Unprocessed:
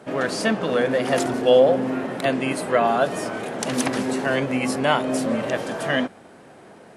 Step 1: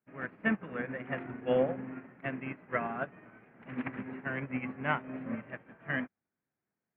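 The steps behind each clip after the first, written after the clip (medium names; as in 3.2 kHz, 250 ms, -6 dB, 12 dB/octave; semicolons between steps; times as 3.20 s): steep low-pass 2.4 kHz 48 dB/octave; peaking EQ 570 Hz -13 dB 2.1 oct; upward expansion 2.5:1, over -48 dBFS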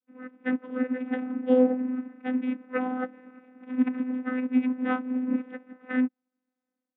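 level rider gain up to 9 dB; vocoder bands 16, saw 254 Hz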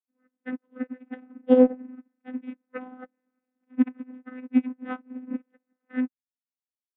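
upward expansion 2.5:1, over -40 dBFS; trim +5.5 dB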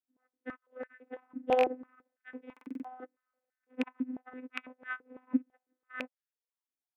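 rattle on loud lows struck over -26 dBFS, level -13 dBFS; buffer glitch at 2.52 s, samples 2048, times 6; step-sequenced high-pass 6 Hz 270–1600 Hz; trim -6.5 dB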